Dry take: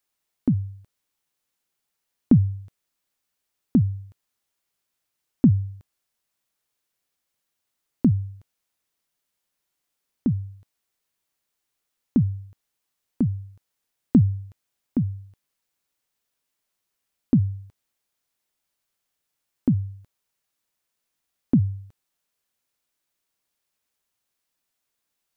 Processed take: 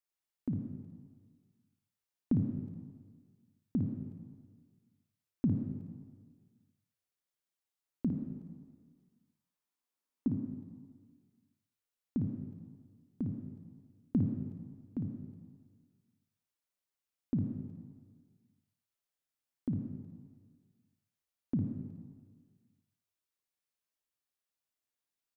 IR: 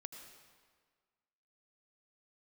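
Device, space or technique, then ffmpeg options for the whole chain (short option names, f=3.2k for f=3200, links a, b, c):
stairwell: -filter_complex "[0:a]asettb=1/sr,asplit=3[a][b][c];[a]atrim=end=8.094[d];[b]atrim=start=8.09:end=10.28,asetpts=PTS-STARTPTS,afade=t=in:d=0.004:c=qsin,afade=t=out:st=2.186:d=0.004:c=qsin,equalizer=f=100:t=o:w=0.67:g=-12,equalizer=f=250:t=o:w=0.67:g=8,equalizer=f=1k:t=o:w=0.67:g=6[e];[c]atrim=start=10.276[f];[d][e]acrossfade=d=0.004:c1=hsin:c2=qsin[g];[g][f]acrossfade=d=0.004:c1=qsin:c2=hsin[h];[1:a]atrim=start_sample=2205[i];[h][i]afir=irnorm=-1:irlink=0,aecho=1:1:35|56:0.15|0.501,volume=-8.5dB"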